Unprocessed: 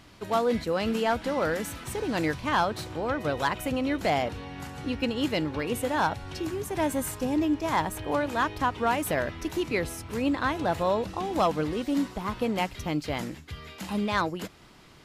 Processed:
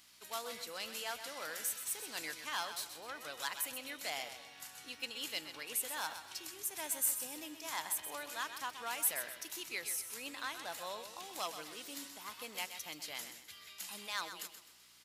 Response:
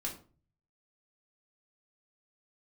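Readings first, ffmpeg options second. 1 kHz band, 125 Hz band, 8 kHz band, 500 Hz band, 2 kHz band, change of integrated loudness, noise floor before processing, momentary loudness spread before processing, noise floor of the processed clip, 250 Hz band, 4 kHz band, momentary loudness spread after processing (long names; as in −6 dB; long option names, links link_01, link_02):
−16.0 dB, −32.0 dB, +2.5 dB, −21.0 dB, −10.0 dB, −11.5 dB, −52 dBFS, 7 LU, −58 dBFS, −26.5 dB, −4.5 dB, 11 LU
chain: -filter_complex "[0:a]asplit=2[link_01][link_02];[link_02]aecho=0:1:128|256|384|512:0.316|0.117|0.0433|0.016[link_03];[link_01][link_03]amix=inputs=2:normalize=0,aeval=exprs='val(0)+0.00562*(sin(2*PI*60*n/s)+sin(2*PI*2*60*n/s)/2+sin(2*PI*3*60*n/s)/3+sin(2*PI*4*60*n/s)/4+sin(2*PI*5*60*n/s)/5)':channel_layout=same,aderivative,volume=1dB"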